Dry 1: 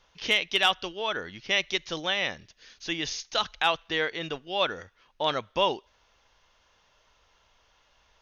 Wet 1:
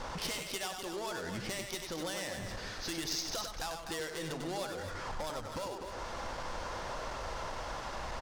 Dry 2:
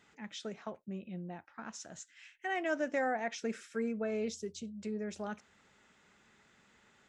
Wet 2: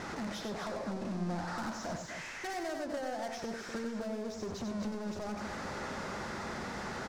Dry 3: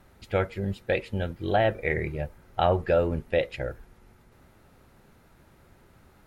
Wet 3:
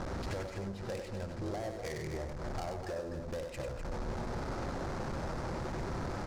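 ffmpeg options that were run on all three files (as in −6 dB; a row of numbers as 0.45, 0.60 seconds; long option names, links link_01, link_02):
-filter_complex "[0:a]aeval=exprs='val(0)+0.5*0.0251*sgn(val(0))':channel_layout=same,bandreject=frequency=440:width=12,adynamicsmooth=sensitivity=5:basefreq=1300,firequalizer=gain_entry='entry(290,0);entry(470,3);entry(3100,-4)':delay=0.05:min_phase=1,acompressor=threshold=-35dB:ratio=16,volume=35dB,asoftclip=hard,volume=-35dB,highshelf=frequency=3900:width_type=q:width=1.5:gain=9,asplit=2[link_01][link_02];[link_02]aecho=0:1:96.21|250.7:0.501|0.398[link_03];[link_01][link_03]amix=inputs=2:normalize=0"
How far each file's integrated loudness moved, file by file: −11.0, 0.0, −12.0 LU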